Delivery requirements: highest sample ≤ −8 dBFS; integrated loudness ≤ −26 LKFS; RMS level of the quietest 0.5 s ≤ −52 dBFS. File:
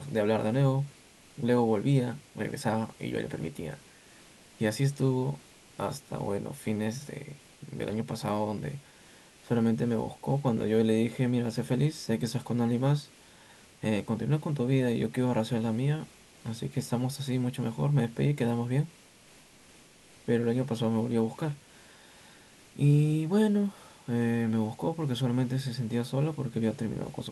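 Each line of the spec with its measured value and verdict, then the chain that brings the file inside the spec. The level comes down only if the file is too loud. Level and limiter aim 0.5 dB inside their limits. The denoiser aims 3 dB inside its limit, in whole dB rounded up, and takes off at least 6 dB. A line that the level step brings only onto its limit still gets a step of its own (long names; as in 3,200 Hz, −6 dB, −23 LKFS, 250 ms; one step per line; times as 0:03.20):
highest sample −13.0 dBFS: in spec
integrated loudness −30.0 LKFS: in spec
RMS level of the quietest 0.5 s −56 dBFS: in spec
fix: no processing needed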